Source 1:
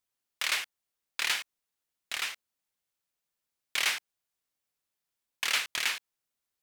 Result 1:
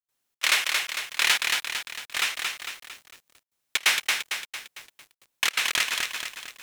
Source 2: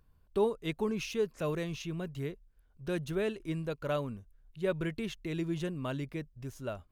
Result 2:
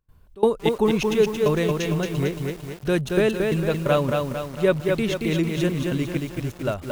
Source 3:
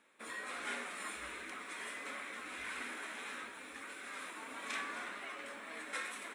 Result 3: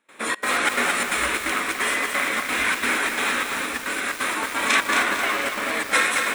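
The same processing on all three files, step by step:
band-stop 4.7 kHz, Q 20; trance gate ".xxx.xxx" 175 bpm -24 dB; bit-crushed delay 226 ms, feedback 55%, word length 9-bit, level -3.5 dB; peak normalisation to -6 dBFS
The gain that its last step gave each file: +8.0 dB, +12.0 dB, +21.5 dB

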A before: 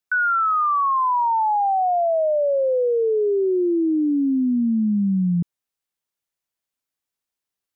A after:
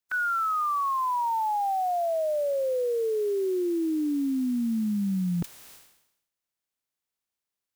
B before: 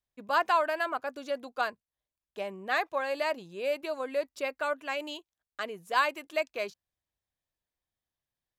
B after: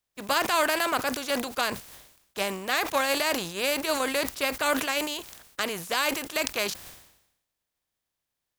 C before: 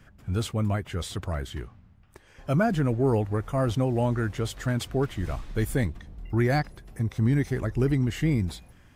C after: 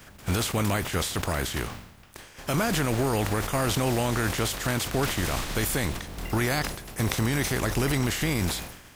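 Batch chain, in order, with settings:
spectral contrast reduction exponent 0.54; peak limiter -20.5 dBFS; decay stretcher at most 69 dB/s; normalise loudness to -27 LUFS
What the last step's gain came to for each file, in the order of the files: -2.5 dB, +6.5 dB, +4.5 dB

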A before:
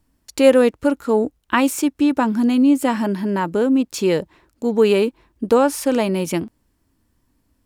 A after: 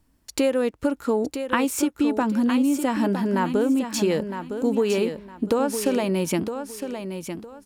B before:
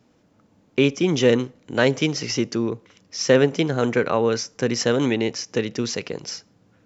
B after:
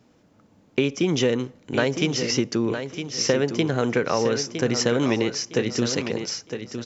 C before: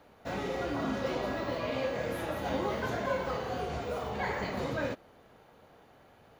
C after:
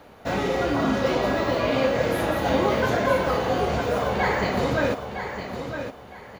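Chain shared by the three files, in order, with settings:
compression 6:1, threshold -19 dBFS; on a send: feedback delay 960 ms, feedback 26%, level -8.5 dB; on the sum: normalise loudness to -24 LUFS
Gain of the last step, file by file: +0.5 dB, +1.5 dB, +10.0 dB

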